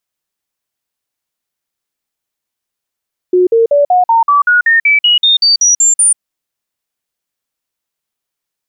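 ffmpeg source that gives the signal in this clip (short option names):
-f lavfi -i "aevalsrc='0.531*clip(min(mod(t,0.19),0.14-mod(t,0.19))/0.005,0,1)*sin(2*PI*363*pow(2,floor(t/0.19)/3)*mod(t,0.19))':d=2.85:s=44100"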